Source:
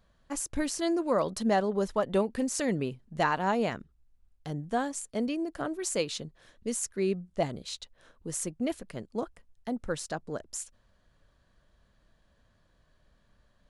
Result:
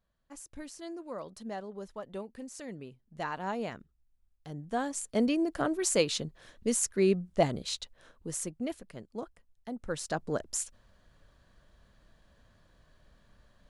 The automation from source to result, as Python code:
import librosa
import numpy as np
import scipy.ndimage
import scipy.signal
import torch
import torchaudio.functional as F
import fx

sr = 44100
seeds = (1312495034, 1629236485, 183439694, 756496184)

y = fx.gain(x, sr, db=fx.line((2.9, -13.5), (3.44, -7.0), (4.49, -7.0), (5.17, 3.5), (7.73, 3.5), (8.87, -6.0), (9.74, -6.0), (10.23, 4.0)))